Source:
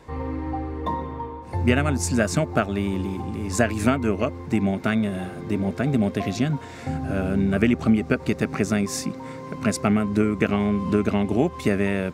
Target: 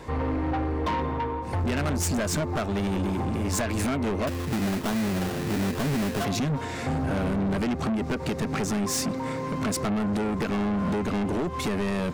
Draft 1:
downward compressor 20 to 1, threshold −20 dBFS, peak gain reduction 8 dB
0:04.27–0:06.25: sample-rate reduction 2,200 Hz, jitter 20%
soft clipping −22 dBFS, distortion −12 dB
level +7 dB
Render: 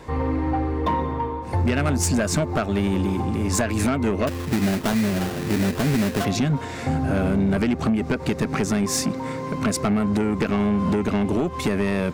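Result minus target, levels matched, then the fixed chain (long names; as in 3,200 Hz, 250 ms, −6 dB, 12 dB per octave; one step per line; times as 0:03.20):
soft clipping: distortion −6 dB
downward compressor 20 to 1, threshold −20 dBFS, peak gain reduction 8 dB
0:04.27–0:06.25: sample-rate reduction 2,200 Hz, jitter 20%
soft clipping −30.5 dBFS, distortion −6 dB
level +7 dB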